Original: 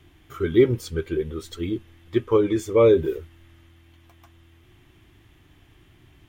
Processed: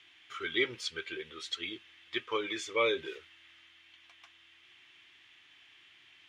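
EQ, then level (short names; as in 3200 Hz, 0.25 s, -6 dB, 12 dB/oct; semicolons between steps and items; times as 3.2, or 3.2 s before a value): band-pass 2600 Hz, Q 1.1; air absorption 62 m; high shelf 2300 Hz +11.5 dB; 0.0 dB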